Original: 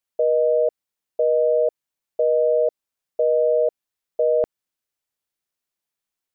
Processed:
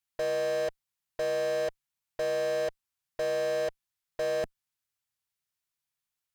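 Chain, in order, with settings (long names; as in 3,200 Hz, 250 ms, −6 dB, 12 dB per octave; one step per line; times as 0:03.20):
octave-band graphic EQ 125/250/500 Hz +6/−7/−9 dB
soft clipping −33.5 dBFS, distortion −8 dB
harmonic generator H 3 −6 dB, 4 −20 dB, 8 −21 dB, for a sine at −33.5 dBFS
level +4 dB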